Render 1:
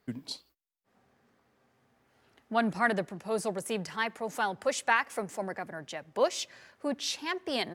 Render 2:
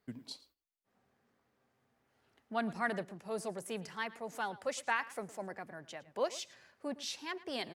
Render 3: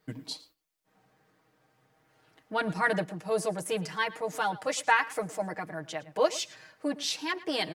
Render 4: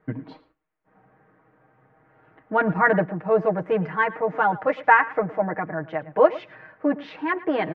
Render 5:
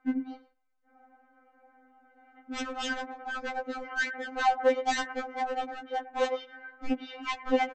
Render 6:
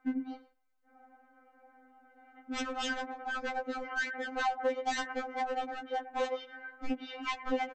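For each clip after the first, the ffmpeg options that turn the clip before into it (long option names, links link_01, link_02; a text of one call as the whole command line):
ffmpeg -i in.wav -filter_complex "[0:a]asplit=2[link_01][link_02];[link_02]adelay=110.8,volume=-18dB,highshelf=frequency=4000:gain=-2.49[link_03];[link_01][link_03]amix=inputs=2:normalize=0,volume=-7.5dB" out.wav
ffmpeg -i in.wav -af "aecho=1:1:6.4:0.92,volume=6.5dB" out.wav
ffmpeg -i in.wav -af "lowpass=frequency=1900:width=0.5412,lowpass=frequency=1900:width=1.3066,volume=9dB" out.wav
ffmpeg -i in.wav -af "aresample=16000,volume=22.5dB,asoftclip=hard,volume=-22.5dB,aresample=44100,afftfilt=real='re*3.46*eq(mod(b,12),0)':imag='im*3.46*eq(mod(b,12),0)':win_size=2048:overlap=0.75" out.wav
ffmpeg -i in.wav -af "acompressor=threshold=-31dB:ratio=2.5" out.wav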